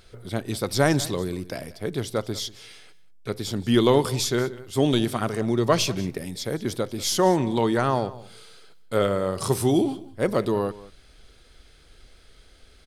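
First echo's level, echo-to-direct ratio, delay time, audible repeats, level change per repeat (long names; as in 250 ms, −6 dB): −19.0 dB, −19.0 dB, 188 ms, 1, repeats not evenly spaced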